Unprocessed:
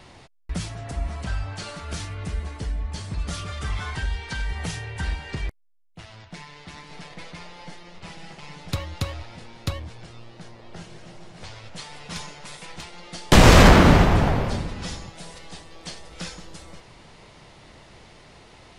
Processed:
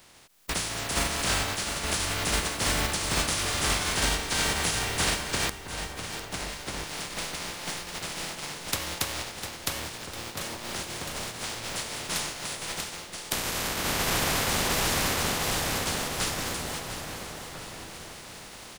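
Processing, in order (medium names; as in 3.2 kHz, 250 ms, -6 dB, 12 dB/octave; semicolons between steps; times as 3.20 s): spectral contrast reduction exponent 0.32; on a send: feedback delay 701 ms, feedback 49%, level -13 dB; on the sum: compression 12:1, threshold -25 dBFS, peak gain reduction 18.5 dB; echo from a far wall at 230 m, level -7 dB; level rider gain up to 11 dB; trim -7.5 dB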